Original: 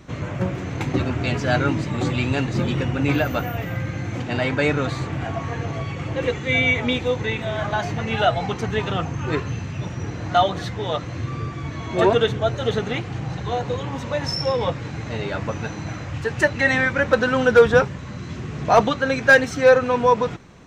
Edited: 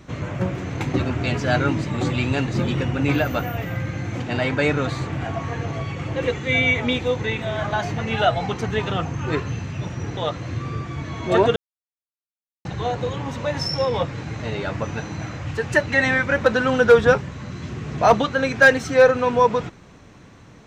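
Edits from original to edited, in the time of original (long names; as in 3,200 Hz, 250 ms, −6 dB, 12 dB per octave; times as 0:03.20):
0:10.17–0:10.84: remove
0:12.23–0:13.32: silence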